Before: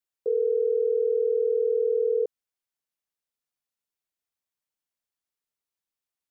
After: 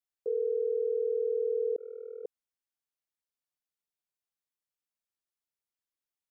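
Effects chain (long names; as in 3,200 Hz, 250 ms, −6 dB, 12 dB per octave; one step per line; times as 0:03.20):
0:01.76–0:02.25: noise gate −21 dBFS, range −40 dB
level −6 dB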